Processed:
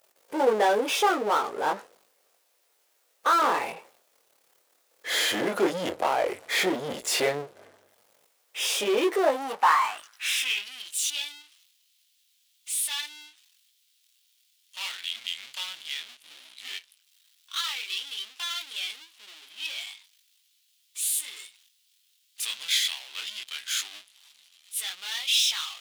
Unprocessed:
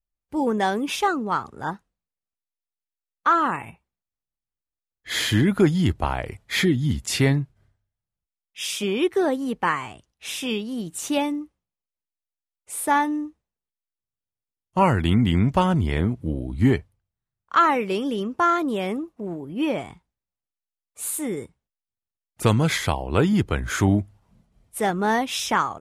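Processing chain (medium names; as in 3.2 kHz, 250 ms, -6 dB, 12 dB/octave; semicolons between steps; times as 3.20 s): chorus 0.11 Hz, delay 18.5 ms, depth 5.3 ms; power-law waveshaper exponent 0.5; high-pass sweep 490 Hz -> 3.3 kHz, 9.08–10.98 s; trim -7 dB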